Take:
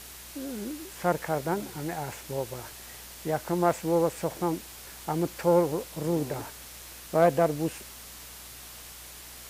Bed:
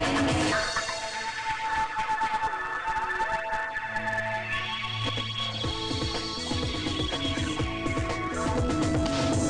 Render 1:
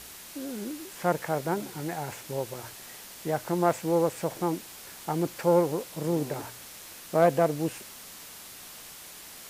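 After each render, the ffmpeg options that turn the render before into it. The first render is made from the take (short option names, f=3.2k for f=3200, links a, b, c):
-af "bandreject=f=60:t=h:w=4,bandreject=f=120:t=h:w=4"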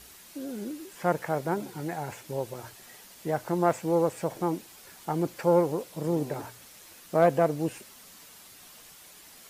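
-af "afftdn=nr=7:nf=-46"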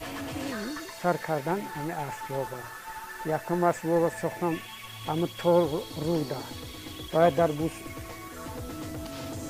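-filter_complex "[1:a]volume=-11.5dB[a];[0:a][a]amix=inputs=2:normalize=0"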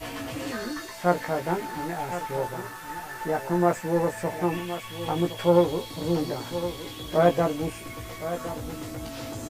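-filter_complex "[0:a]asplit=2[a][b];[b]adelay=17,volume=-3.5dB[c];[a][c]amix=inputs=2:normalize=0,aecho=1:1:1066:0.266"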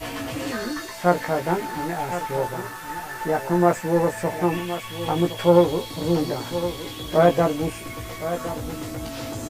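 -af "volume=4dB,alimiter=limit=-3dB:level=0:latency=1"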